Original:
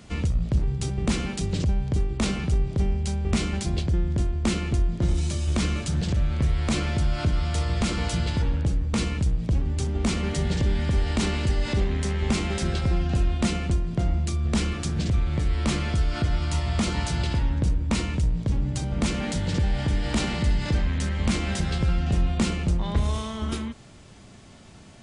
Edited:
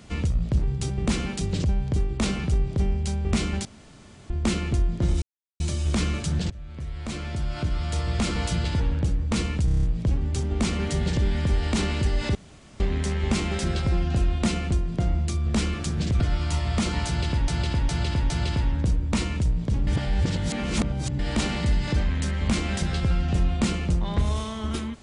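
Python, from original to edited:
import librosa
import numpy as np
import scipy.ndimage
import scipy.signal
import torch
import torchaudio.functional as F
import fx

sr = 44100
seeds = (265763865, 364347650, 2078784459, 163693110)

y = fx.edit(x, sr, fx.room_tone_fill(start_s=3.65, length_s=0.65),
    fx.insert_silence(at_s=5.22, length_s=0.38),
    fx.fade_in_from(start_s=6.12, length_s=1.77, floor_db=-19.5),
    fx.stutter(start_s=9.27, slice_s=0.03, count=7),
    fx.insert_room_tone(at_s=11.79, length_s=0.45),
    fx.cut(start_s=15.19, length_s=1.02),
    fx.repeat(start_s=17.08, length_s=0.41, count=4),
    fx.reverse_span(start_s=18.65, length_s=1.32), tone=tone)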